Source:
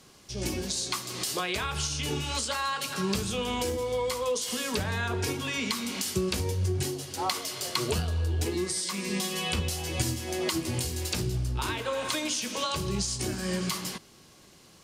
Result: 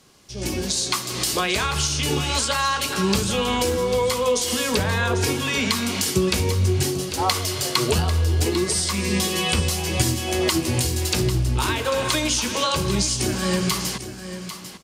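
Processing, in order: level rider gain up to 8 dB; delay 796 ms -11 dB

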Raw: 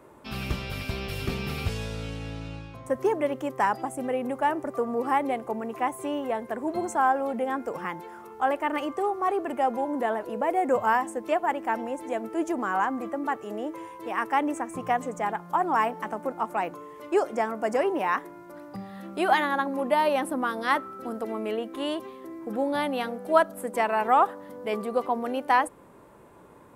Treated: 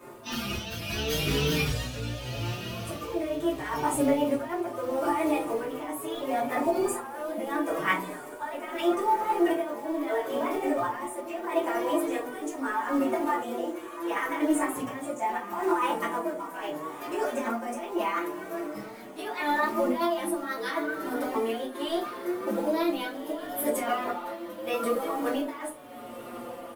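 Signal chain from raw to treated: sawtooth pitch modulation +3 st, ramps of 388 ms; high-pass 140 Hz 6 dB/octave; treble shelf 4.3 kHz +7.5 dB; compressor with a negative ratio -30 dBFS, ratio -1; echo that smears into a reverb 1373 ms, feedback 40%, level -13 dB; tremolo 0.76 Hz, depth 58%; companded quantiser 6-bit; simulated room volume 120 m³, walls furnished, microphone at 2.7 m; endless flanger 5.1 ms -0.46 Hz

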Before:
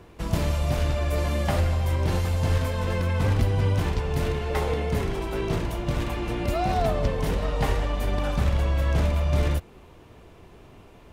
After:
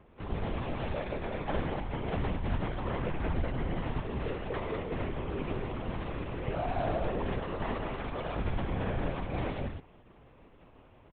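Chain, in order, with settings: distance through air 250 m; loudspeakers at several distances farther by 31 m -6 dB, 68 m -6 dB; LPC vocoder at 8 kHz whisper; bass shelf 480 Hz -4 dB; trim -6.5 dB

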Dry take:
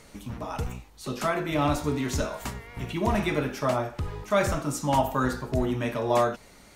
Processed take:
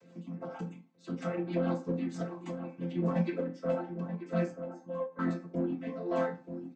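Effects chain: vocoder on a held chord major triad, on F3; reverb removal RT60 1.5 s; 4.52–5.19 s: feedback comb 530 Hz, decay 0.19 s, harmonics all, mix 90%; rotary cabinet horn 6.3 Hz, later 0.85 Hz, at 2.50 s; in parallel at -4 dB: saturation -31.5 dBFS, distortion -7 dB; on the sum: echo from a far wall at 160 m, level -9 dB; reverberation RT60 0.35 s, pre-delay 3 ms, DRR 0.5 dB; endings held to a fixed fall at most 260 dB/s; trim -7 dB

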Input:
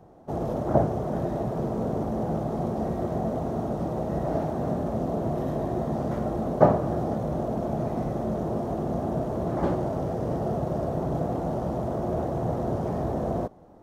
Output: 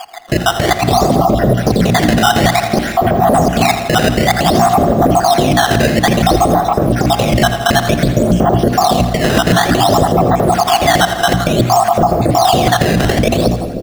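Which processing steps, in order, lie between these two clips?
random holes in the spectrogram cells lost 61%; decimation with a swept rate 11×, swing 160% 0.56 Hz; treble shelf 2.4 kHz +7.5 dB; band-stop 920 Hz, Q 7.7; in parallel at -3.5 dB: hard clipper -27 dBFS, distortion -8 dB; on the sum: hum notches 60/120/180/240/300 Hz; compressor with a negative ratio -30 dBFS, ratio -0.5; treble shelf 5.3 kHz -10.5 dB; feedback delay 82 ms, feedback 59%, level -14 dB; on a send at -13.5 dB: reverberation RT60 2.0 s, pre-delay 3 ms; on the sum: loudness maximiser +24 dB; trim -1 dB

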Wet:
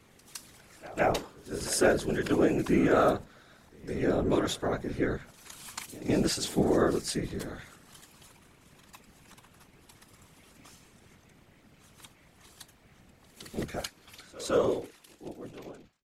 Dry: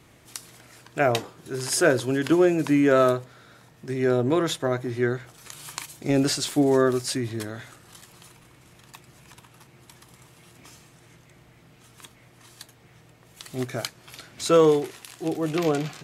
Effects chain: fade out at the end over 2.47 s; whisper effect; pre-echo 162 ms -19.5 dB; trim -5 dB

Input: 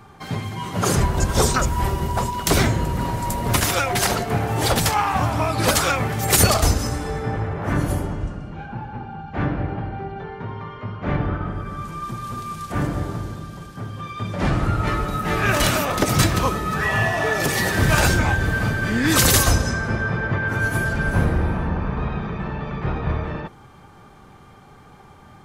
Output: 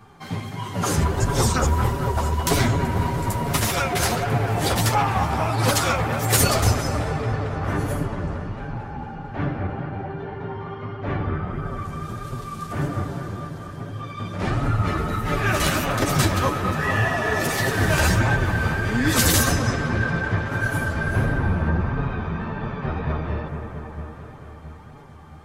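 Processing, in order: feedback echo behind a low-pass 224 ms, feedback 76%, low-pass 2.2 kHz, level -7 dB; chorus voices 2, 1.5 Hz, delay 10 ms, depth 3 ms

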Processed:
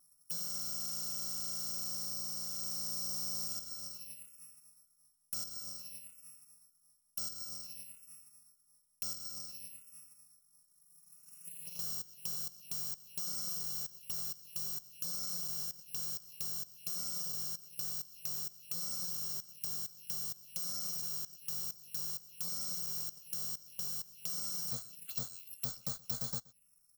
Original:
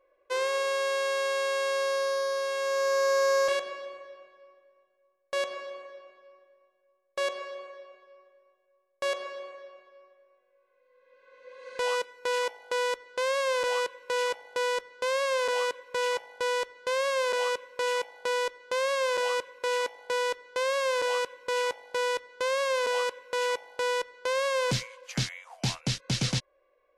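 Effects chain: bit-reversed sample order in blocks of 128 samples; treble shelf 3.6 kHz +7.5 dB; compression 3:1, threshold -30 dBFS, peak gain reduction 11 dB; touch-sensitive phaser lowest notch 440 Hz, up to 2.5 kHz, full sweep at -31.5 dBFS; on a send: delay 125 ms -23 dB; on the sum: trim -5.5 dB

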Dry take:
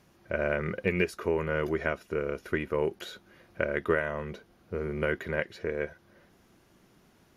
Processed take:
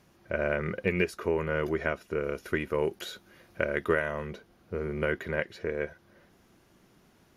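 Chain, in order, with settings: 2.23–4.27 s: treble shelf 4.2 kHz +6 dB

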